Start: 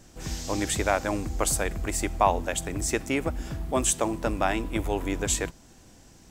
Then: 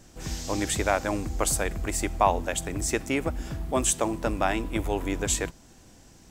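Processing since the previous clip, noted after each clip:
no processing that can be heard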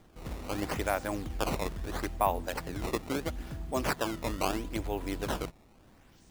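sample-and-hold swept by an LFO 16×, swing 160% 0.76 Hz
level −6 dB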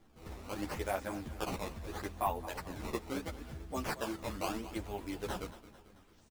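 repeating echo 221 ms, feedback 53%, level −15 dB
string-ensemble chorus
level −3 dB

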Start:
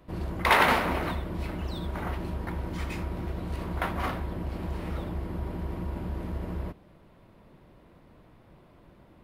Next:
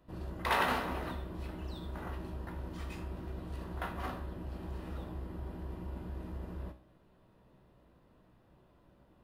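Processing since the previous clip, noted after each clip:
notch filter 2,200 Hz, Q 7.7
tuned comb filter 63 Hz, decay 0.45 s, harmonics all, mix 70%
level −2.5 dB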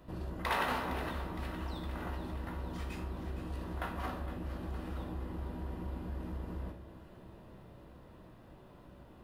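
downward compressor 1.5 to 1, threshold −59 dBFS, peak gain reduction 12 dB
delay that swaps between a low-pass and a high-pass 231 ms, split 1,100 Hz, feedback 79%, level −9.5 dB
level +8.5 dB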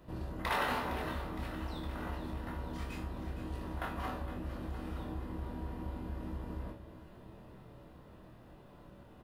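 double-tracking delay 25 ms −5.5 dB
level −1 dB

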